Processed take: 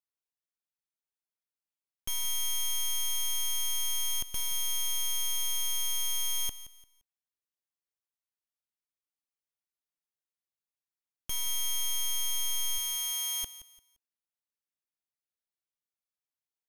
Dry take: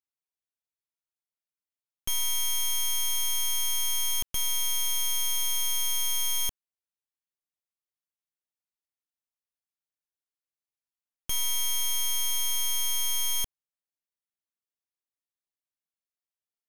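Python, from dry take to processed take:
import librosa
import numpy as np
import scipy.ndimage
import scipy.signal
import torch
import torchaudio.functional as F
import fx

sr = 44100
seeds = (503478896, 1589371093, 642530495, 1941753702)

y = fx.highpass(x, sr, hz=fx.line((12.77, 780.0), (13.43, 230.0)), slope=12, at=(12.77, 13.43), fade=0.02)
y = fx.echo_feedback(y, sr, ms=173, feedback_pct=30, wet_db=-15.5)
y = y * 10.0 ** (-4.5 / 20.0)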